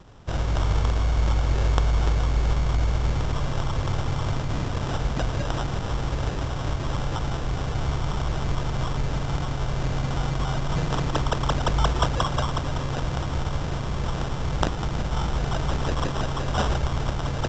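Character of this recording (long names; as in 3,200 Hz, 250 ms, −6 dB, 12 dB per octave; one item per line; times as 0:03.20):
aliases and images of a low sample rate 2,200 Hz, jitter 0%
A-law companding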